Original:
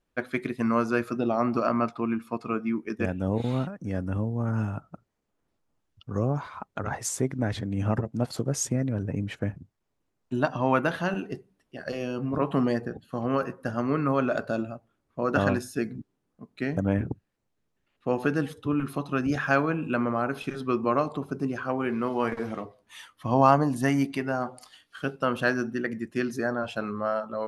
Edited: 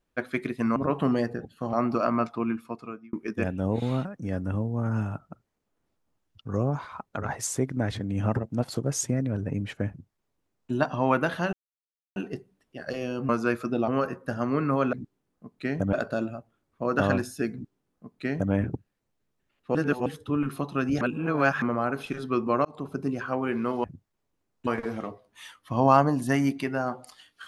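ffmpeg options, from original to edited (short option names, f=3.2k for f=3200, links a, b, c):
-filter_complex "[0:a]asplit=16[a][b][c][d][e][f][g][h][i][j][k][l][m][n][o][p];[a]atrim=end=0.762[q];[b]atrim=start=12.278:end=13.252[r];[c]atrim=start=1.348:end=2.75,asetpts=PTS-STARTPTS,afade=t=out:st=0.752:d=0.65[s];[d]atrim=start=2.75:end=11.15,asetpts=PTS-STARTPTS,afade=t=in:d=0.004:c=hsin,afade=t=out:st=8.396:d=0.004:c=hsin,apad=pad_dur=0.63[t];[e]atrim=start=11.15:end=12.282,asetpts=PTS-STARTPTS,afade=t=in:d=0.004:c=hsin[u];[f]atrim=start=0.758:end=1.352[v];[g]atrim=start=13.248:end=14.302[w];[h]atrim=start=15.898:end=16.902[x];[i]atrim=start=14.298:end=18.122[y];[j]atrim=start=18.118:end=18.432,asetpts=PTS-STARTPTS,areverse[z];[k]atrim=start=18.428:end=19.382[aa];[l]atrim=start=19.378:end=19.992,asetpts=PTS-STARTPTS,areverse[ab];[m]atrim=start=19.988:end=21.02,asetpts=PTS-STARTPTS,afade=t=out:st=1.028:d=0.004:c=hsin[ac];[n]atrim=start=21.02:end=22.212,asetpts=PTS-STARTPTS,afade=t=in:d=0.34:c=qsin[ad];[o]atrim=start=9.508:end=10.342[ae];[p]atrim=start=22.208[af];[q][r]acrossfade=d=0.004:c1=hsin:c2=hsin[ag];[s][t][u]concat=n=3:v=0:a=1[ah];[ag][ah]acrossfade=d=0.004:c1=hsin:c2=hsin[ai];[ai][v]acrossfade=d=0.004:c1=hsin:c2=hsin[aj];[aj][w]acrossfade=d=0.004:c1=hsin:c2=hsin[ak];[ak][x]acrossfade=d=0.004:c1=hsin:c2=hsin[al];[al][y]acrossfade=d=0.004:c1=hsin:c2=hsin[am];[am][z]acrossfade=d=0.004:c1=hsin:c2=hsin[an];[an][aa]acrossfade=d=0.004:c1=hsin:c2=hsin[ao];[ao][ab]acrossfade=d=0.004:c1=hsin:c2=hsin[ap];[ac][ad]concat=n=2:v=0:a=1[aq];[ap][aq]acrossfade=d=0.004:c1=hsin:c2=hsin[ar];[ar][ae]acrossfade=d=0.004:c1=hsin:c2=hsin[as];[as][af]acrossfade=d=0.004:c1=hsin:c2=hsin"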